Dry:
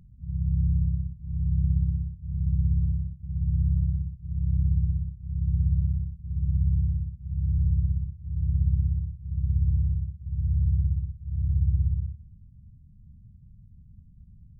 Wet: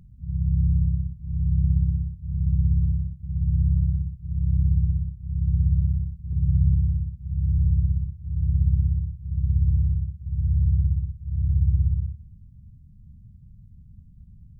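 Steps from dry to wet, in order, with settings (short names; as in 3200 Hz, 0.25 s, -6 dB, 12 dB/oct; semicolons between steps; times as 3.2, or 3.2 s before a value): 6.32–6.74 dynamic EQ 130 Hz, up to +4 dB, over -39 dBFS, Q 1.5; gain +3 dB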